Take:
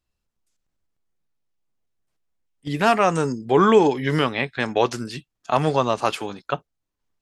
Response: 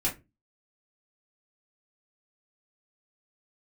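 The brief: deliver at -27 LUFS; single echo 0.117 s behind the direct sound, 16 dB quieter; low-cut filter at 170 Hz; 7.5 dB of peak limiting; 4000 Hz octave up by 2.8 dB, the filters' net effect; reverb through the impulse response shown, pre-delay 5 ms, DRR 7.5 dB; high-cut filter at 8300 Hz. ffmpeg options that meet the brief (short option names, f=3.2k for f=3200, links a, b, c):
-filter_complex "[0:a]highpass=170,lowpass=8.3k,equalizer=f=4k:t=o:g=4,alimiter=limit=-11dB:level=0:latency=1,aecho=1:1:117:0.158,asplit=2[a][b];[1:a]atrim=start_sample=2205,adelay=5[c];[b][c]afir=irnorm=-1:irlink=0,volume=-14.5dB[d];[a][d]amix=inputs=2:normalize=0,volume=-4dB"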